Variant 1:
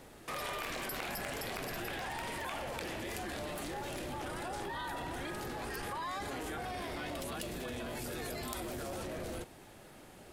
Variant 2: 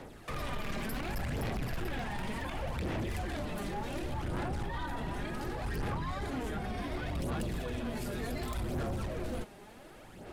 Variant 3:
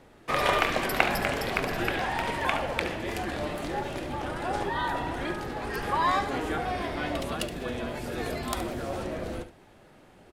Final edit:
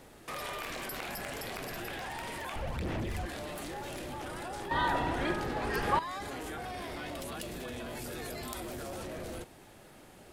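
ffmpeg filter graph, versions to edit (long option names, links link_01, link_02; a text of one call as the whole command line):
ffmpeg -i take0.wav -i take1.wav -i take2.wav -filter_complex "[0:a]asplit=3[link_01][link_02][link_03];[link_01]atrim=end=2.562[link_04];[1:a]atrim=start=2.558:end=3.262[link_05];[link_02]atrim=start=3.258:end=4.712[link_06];[2:a]atrim=start=4.708:end=5.992[link_07];[link_03]atrim=start=5.988[link_08];[link_04][link_05]acrossfade=duration=0.004:curve1=hsin:curve2=hsin[link_09];[link_09][link_06]acrossfade=duration=0.004:curve1=hsin:curve2=hsin[link_10];[link_10][link_07]acrossfade=duration=0.004:curve1=hsin:curve2=hsin[link_11];[link_11][link_08]acrossfade=duration=0.004:curve1=hsin:curve2=hsin" out.wav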